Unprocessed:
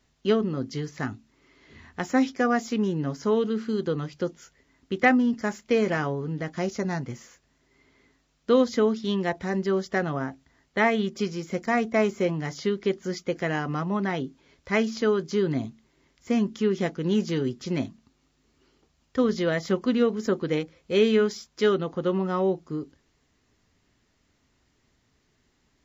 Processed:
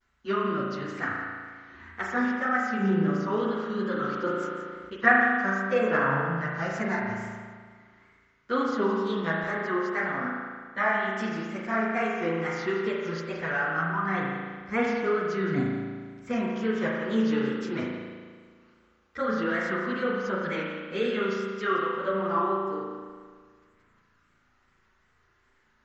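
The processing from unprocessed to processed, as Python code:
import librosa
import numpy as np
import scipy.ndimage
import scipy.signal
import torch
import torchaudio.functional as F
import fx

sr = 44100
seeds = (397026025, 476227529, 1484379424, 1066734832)

p1 = fx.peak_eq(x, sr, hz=1400.0, db=15.0, octaves=1.2)
p2 = fx.rider(p1, sr, range_db=3, speed_s=0.5)
p3 = fx.wow_flutter(p2, sr, seeds[0], rate_hz=2.1, depth_cents=120.0)
p4 = fx.chorus_voices(p3, sr, voices=6, hz=1.4, base_ms=11, depth_ms=3.0, mix_pct=65)
p5 = p4 + fx.echo_single(p4, sr, ms=170, db=-13.0, dry=0)
p6 = fx.rev_spring(p5, sr, rt60_s=1.7, pass_ms=(36,), chirp_ms=65, drr_db=-2.0)
p7 = fx.sustainer(p6, sr, db_per_s=28.0, at=(3.9, 4.94))
y = F.gain(torch.from_numpy(p7), -8.5).numpy()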